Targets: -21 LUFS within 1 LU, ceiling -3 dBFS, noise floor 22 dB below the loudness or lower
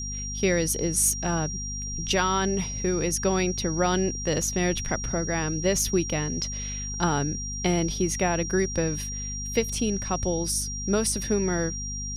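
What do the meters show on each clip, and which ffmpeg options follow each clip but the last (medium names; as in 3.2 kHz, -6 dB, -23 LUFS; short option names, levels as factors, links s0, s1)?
hum 50 Hz; highest harmonic 250 Hz; hum level -33 dBFS; steady tone 5.7 kHz; tone level -33 dBFS; loudness -26.0 LUFS; peak level -10.0 dBFS; loudness target -21.0 LUFS
-> -af "bandreject=f=50:t=h:w=4,bandreject=f=100:t=h:w=4,bandreject=f=150:t=h:w=4,bandreject=f=200:t=h:w=4,bandreject=f=250:t=h:w=4"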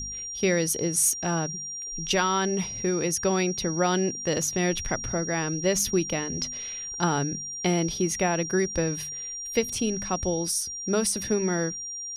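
hum not found; steady tone 5.7 kHz; tone level -33 dBFS
-> -af "bandreject=f=5700:w=30"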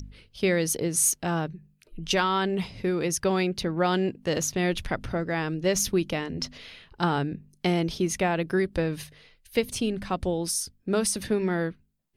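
steady tone not found; loudness -27.0 LUFS; peak level -11.5 dBFS; loudness target -21.0 LUFS
-> -af "volume=2"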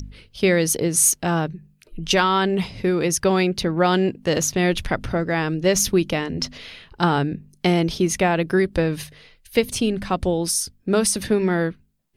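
loudness -21.0 LUFS; peak level -5.5 dBFS; noise floor -60 dBFS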